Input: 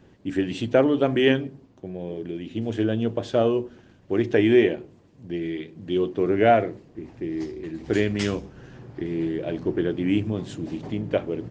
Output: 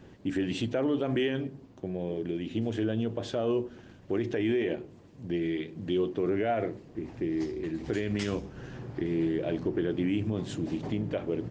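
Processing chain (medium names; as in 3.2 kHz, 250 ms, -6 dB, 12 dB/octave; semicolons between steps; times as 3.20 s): in parallel at 0 dB: compression, threshold -35 dBFS, peak gain reduction 20.5 dB; on the sum: peak limiter -16 dBFS, peak gain reduction 11 dB; trim -4 dB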